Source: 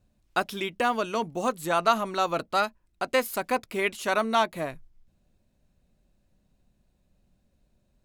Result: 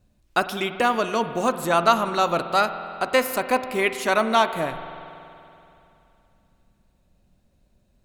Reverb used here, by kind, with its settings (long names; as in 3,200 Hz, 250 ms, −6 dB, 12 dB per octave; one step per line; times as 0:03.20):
spring reverb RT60 2.9 s, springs 47 ms, chirp 45 ms, DRR 10 dB
level +4.5 dB